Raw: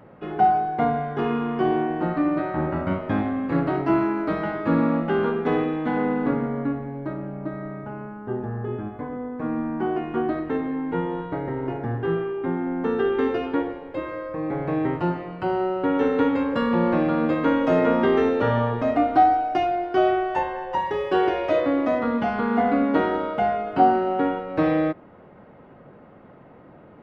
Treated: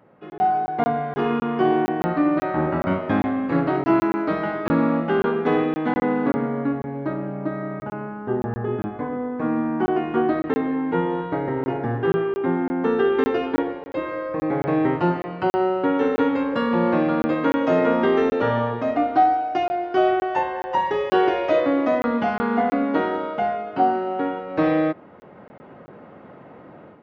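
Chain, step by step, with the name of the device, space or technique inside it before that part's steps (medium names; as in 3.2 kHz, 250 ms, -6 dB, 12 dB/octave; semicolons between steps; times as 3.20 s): call with lost packets (high-pass 150 Hz 6 dB/octave; resampled via 16 kHz; level rider; lost packets of 20 ms random); trim -6 dB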